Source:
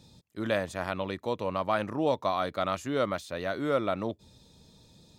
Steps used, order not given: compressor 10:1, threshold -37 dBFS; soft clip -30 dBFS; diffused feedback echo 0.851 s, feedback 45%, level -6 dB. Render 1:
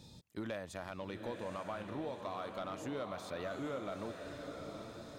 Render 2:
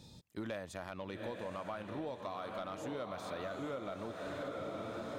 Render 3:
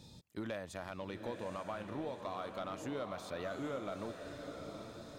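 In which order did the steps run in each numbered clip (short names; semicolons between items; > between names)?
compressor > diffused feedback echo > soft clip; diffused feedback echo > compressor > soft clip; compressor > soft clip > diffused feedback echo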